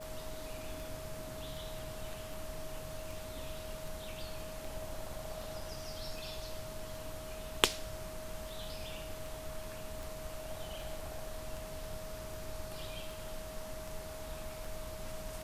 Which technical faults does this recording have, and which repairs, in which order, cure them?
tick 78 rpm
whine 630 Hz -46 dBFS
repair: de-click; band-stop 630 Hz, Q 30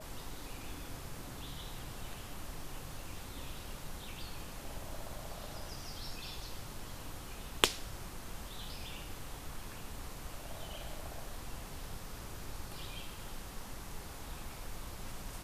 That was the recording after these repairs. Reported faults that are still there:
nothing left

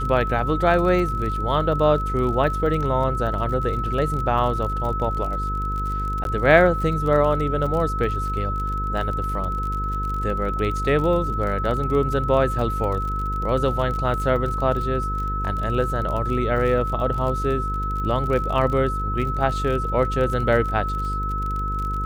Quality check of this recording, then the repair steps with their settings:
buzz 50 Hz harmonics 10 -27 dBFS
crackle 34 per s -28 dBFS
whine 1.3 kHz -26 dBFS
6.24–6.25 s: dropout 12 ms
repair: de-click; de-hum 50 Hz, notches 10; band-stop 1.3 kHz, Q 30; interpolate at 6.24 s, 12 ms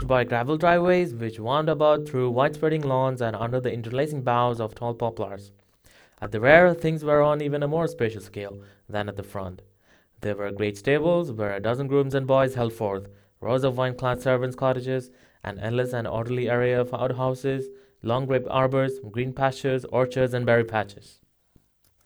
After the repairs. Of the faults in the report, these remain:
nothing left

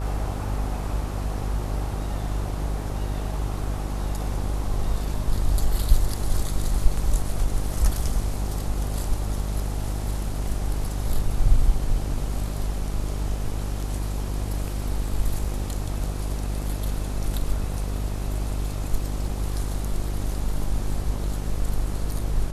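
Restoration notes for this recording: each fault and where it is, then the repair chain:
buzz 50 Hz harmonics 27 -28 dBFS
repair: de-hum 50 Hz, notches 27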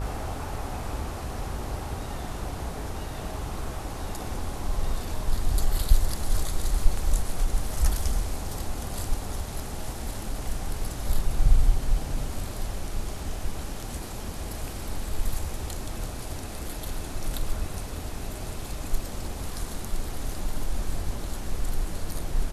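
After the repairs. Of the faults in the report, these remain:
nothing left

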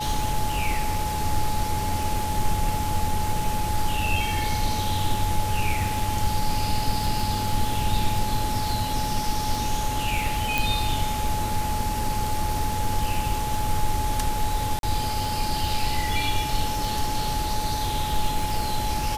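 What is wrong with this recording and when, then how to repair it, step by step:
crackle 43 per s -29 dBFS
whine 850 Hz -28 dBFS
10.58 s: pop
14.79–14.83 s: dropout 42 ms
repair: de-click; band-stop 850 Hz, Q 30; interpolate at 14.79 s, 42 ms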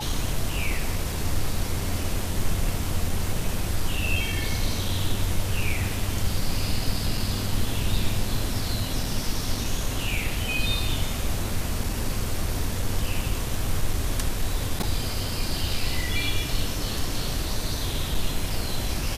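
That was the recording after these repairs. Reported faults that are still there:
10.58 s: pop

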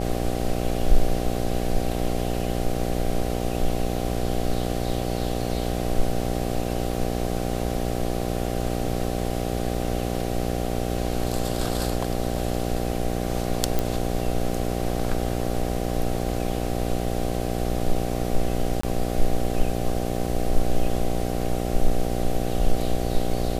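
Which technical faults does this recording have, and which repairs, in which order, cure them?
buzz 60 Hz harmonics 13 -27 dBFS
13.79 s: pop
18.81–18.83 s: dropout 24 ms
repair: de-click; de-hum 60 Hz, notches 13; interpolate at 18.81 s, 24 ms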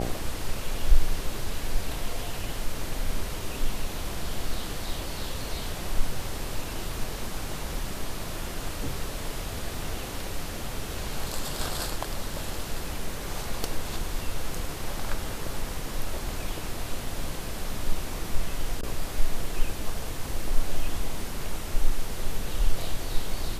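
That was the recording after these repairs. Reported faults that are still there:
nothing left

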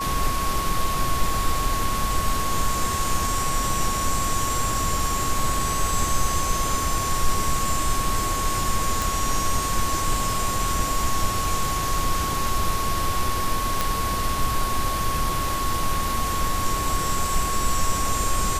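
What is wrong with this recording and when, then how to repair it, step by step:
whine 1.1 kHz -26 dBFS
9.02 s: pop
13.81 s: pop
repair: de-click; band-stop 1.1 kHz, Q 30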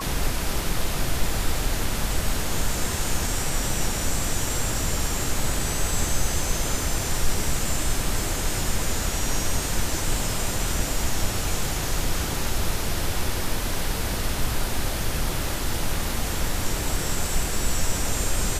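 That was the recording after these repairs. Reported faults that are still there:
nothing left

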